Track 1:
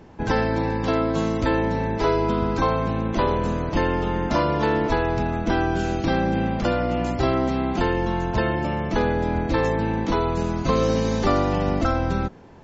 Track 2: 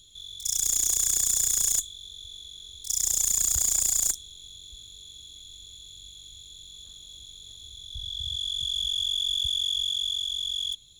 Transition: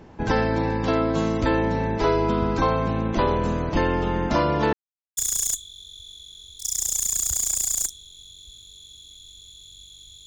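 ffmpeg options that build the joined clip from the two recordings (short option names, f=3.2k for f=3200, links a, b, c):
-filter_complex "[0:a]apad=whole_dur=10.26,atrim=end=10.26,asplit=2[a][b];[a]atrim=end=4.73,asetpts=PTS-STARTPTS,afade=t=out:st=4.726:d=0.004:c=hsin[c];[b]atrim=start=4.73:end=5.17,asetpts=PTS-STARTPTS,volume=0[d];[1:a]atrim=start=1.42:end=6.51,asetpts=PTS-STARTPTS,afade=t=in:d=0.004:c=hsin[e];[c][d][e]concat=n=3:v=0:a=1"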